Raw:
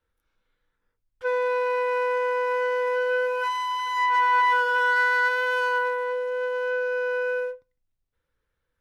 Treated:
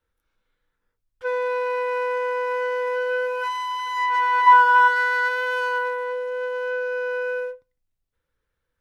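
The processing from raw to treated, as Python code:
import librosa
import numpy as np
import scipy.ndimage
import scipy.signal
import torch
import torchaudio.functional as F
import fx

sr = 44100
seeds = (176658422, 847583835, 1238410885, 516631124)

y = fx.graphic_eq(x, sr, hz=(250, 500, 1000), db=(9, -7, 12), at=(4.46, 4.87), fade=0.02)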